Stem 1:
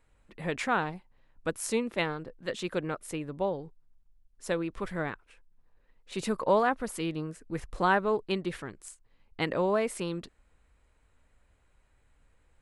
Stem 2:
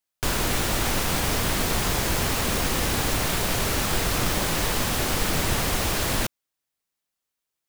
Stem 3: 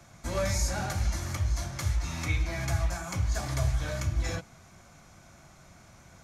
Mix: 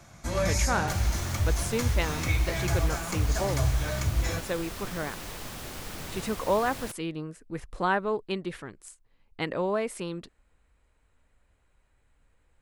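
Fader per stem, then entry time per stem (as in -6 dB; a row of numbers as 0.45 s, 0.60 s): -1.0 dB, -15.0 dB, +2.0 dB; 0.00 s, 0.65 s, 0.00 s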